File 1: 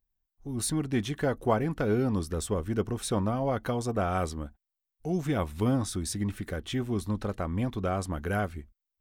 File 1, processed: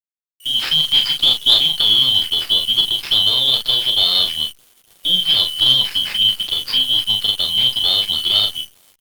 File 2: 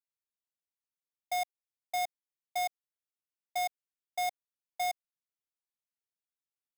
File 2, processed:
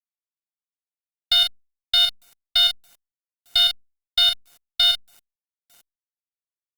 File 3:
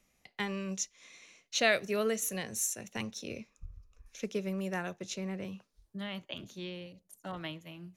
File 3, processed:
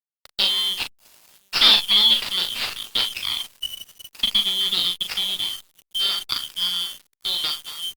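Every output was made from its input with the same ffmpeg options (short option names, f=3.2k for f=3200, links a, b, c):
-filter_complex "[0:a]afftfilt=real='real(if(lt(b,272),68*(eq(floor(b/68),0)*1+eq(floor(b/68),1)*3+eq(floor(b/68),2)*0+eq(floor(b/68),3)*2)+mod(b,68),b),0)':imag='imag(if(lt(b,272),68*(eq(floor(b/68),0)*1+eq(floor(b/68),1)*3+eq(floor(b/68),2)*0+eq(floor(b/68),3)*2)+mod(b,68),b),0)':win_size=2048:overlap=0.75,asplit=2[a][b];[b]acompressor=threshold=-40dB:ratio=16,volume=1dB[c];[a][c]amix=inputs=2:normalize=0,lowshelf=f=150:g=-9.5,aeval=exprs='0.266*(cos(1*acos(clip(val(0)/0.266,-1,1)))-cos(1*PI/2))+0.0422*(cos(2*acos(clip(val(0)/0.266,-1,1)))-cos(2*PI/2))+0.0841*(cos(6*acos(clip(val(0)/0.266,-1,1)))-cos(6*PI/2))':c=same,asplit=2[d][e];[e]adelay=901,lowpass=f=820:p=1,volume=-18.5dB,asplit=2[f][g];[g]adelay=901,lowpass=f=820:p=1,volume=0.37,asplit=2[h][i];[i]adelay=901,lowpass=f=820:p=1,volume=0.37[j];[f][h][j]amix=inputs=3:normalize=0[k];[d][k]amix=inputs=2:normalize=0,aresample=11025,aresample=44100,acrusher=bits=7:mix=0:aa=0.000001,tiltshelf=f=1.1k:g=-10,asplit=2[l][m];[m]adelay=39,volume=-5.5dB[n];[l][n]amix=inputs=2:normalize=0,aeval=exprs='sgn(val(0))*max(abs(val(0))-0.0158,0)':c=same,acontrast=48,volume=-1dB" -ar 48000 -c:a libopus -b:a 48k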